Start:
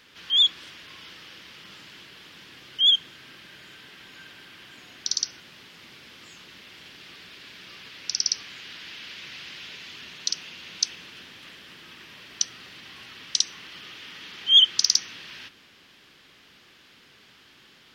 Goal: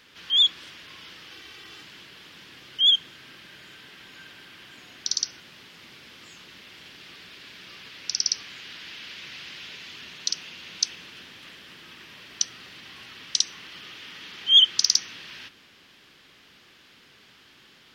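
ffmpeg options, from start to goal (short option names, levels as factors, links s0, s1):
-filter_complex "[0:a]asettb=1/sr,asplit=3[s0][s1][s2];[s0]atrim=end=1.314[s3];[s1]atrim=start=1.31:end=1.83,asetpts=PTS-STARTPTS,afade=t=in:d=0.004:c=qsin,afade=t=out:st=0.516:d=0.004:c=qsin,aecho=1:1:2.6:0.63,atrim=end_sample=22932[s4];[s2]atrim=start=1.826[s5];[s3][s4]acrossfade=d=0.004:c1=hsin:c2=qsin[s6];[s6][s5]acrossfade=d=0.004:c1=qsin:c2=hsin"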